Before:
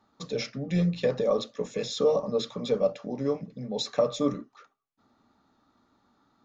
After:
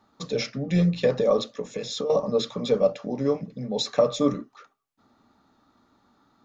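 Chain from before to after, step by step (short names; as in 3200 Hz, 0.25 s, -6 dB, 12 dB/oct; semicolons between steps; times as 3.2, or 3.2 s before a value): 1.49–2.1 compressor 5:1, threshold -32 dBFS, peak gain reduction 12.5 dB; gain +4 dB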